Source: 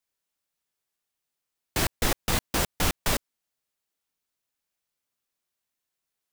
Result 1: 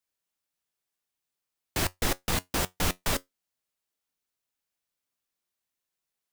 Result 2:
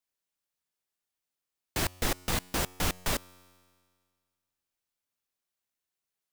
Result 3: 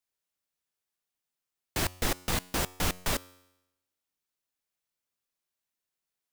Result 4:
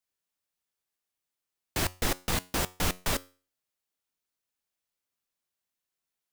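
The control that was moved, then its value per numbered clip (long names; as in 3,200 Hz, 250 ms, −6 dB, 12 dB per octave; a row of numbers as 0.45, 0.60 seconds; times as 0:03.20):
tuned comb filter, decay: 0.15, 1.9, 0.9, 0.37 seconds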